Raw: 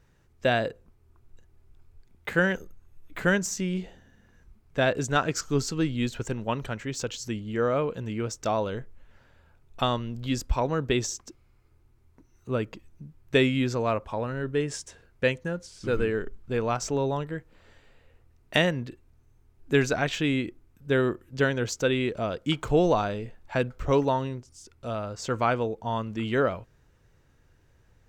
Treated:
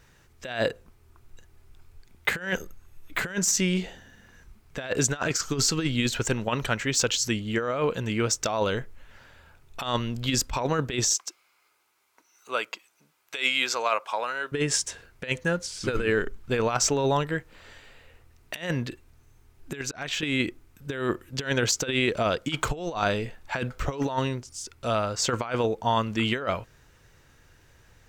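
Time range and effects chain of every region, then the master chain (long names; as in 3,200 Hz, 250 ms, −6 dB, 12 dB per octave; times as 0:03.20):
0:11.13–0:14.52: high-pass filter 760 Hz + notch filter 1,800 Hz, Q 11
0:19.81–0:20.23: volume swells 503 ms + downward compressor 16 to 1, threshold −35 dBFS + hard clipping −30.5 dBFS
whole clip: tilt shelving filter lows −4.5 dB, about 880 Hz; compressor whose output falls as the input rises −29 dBFS, ratio −0.5; level +4.5 dB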